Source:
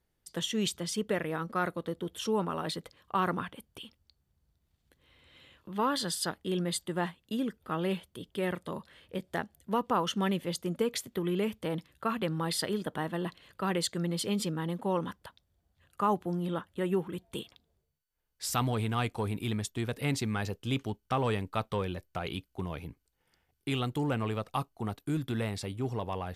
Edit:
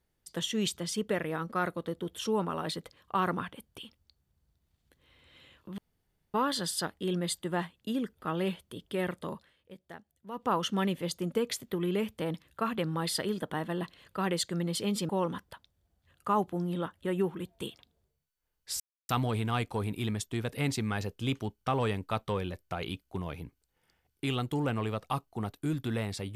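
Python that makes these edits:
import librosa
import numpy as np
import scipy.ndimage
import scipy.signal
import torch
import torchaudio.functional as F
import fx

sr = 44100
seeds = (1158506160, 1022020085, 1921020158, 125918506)

y = fx.edit(x, sr, fx.insert_room_tone(at_s=5.78, length_s=0.56),
    fx.fade_down_up(start_s=8.77, length_s=1.18, db=-13.5, fade_s=0.2),
    fx.cut(start_s=14.53, length_s=0.29),
    fx.insert_silence(at_s=18.53, length_s=0.29), tone=tone)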